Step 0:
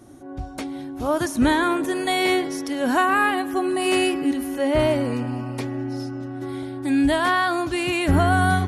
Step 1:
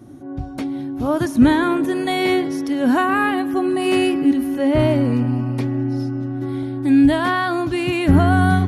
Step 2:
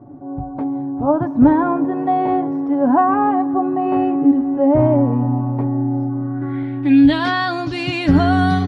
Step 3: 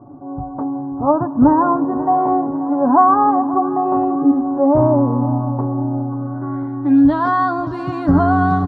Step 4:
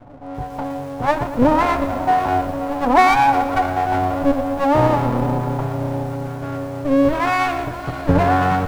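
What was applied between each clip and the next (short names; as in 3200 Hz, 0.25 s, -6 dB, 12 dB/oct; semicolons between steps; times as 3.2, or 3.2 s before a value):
graphic EQ 125/250/8000 Hz +8/+6/-6 dB
comb 7 ms, depth 47%; low-pass sweep 890 Hz -> 5100 Hz, 6.05–7.3; gain -1 dB
resonant high shelf 1700 Hz -13 dB, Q 3; feedback echo 0.536 s, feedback 48%, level -16 dB; gain -1 dB
minimum comb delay 1.2 ms; lo-fi delay 0.117 s, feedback 55%, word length 6-bit, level -12.5 dB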